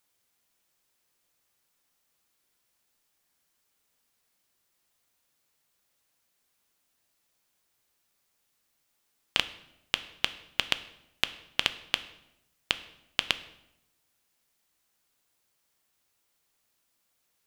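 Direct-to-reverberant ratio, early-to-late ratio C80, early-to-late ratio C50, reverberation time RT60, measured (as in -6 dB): 11.5 dB, 17.5 dB, 15.5 dB, 0.85 s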